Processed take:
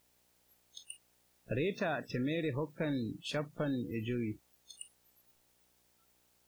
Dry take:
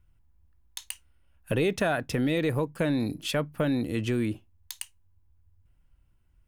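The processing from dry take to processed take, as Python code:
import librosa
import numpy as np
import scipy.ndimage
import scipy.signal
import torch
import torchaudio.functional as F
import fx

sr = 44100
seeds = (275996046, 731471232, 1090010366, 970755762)

y = fx.quant_dither(x, sr, seeds[0], bits=6, dither='triangular')
y = fx.dmg_buzz(y, sr, base_hz=60.0, harmonics=15, level_db=-43.0, tilt_db=-2, odd_only=False)
y = fx.noise_reduce_blind(y, sr, reduce_db=28)
y = y * librosa.db_to_amplitude(-8.5)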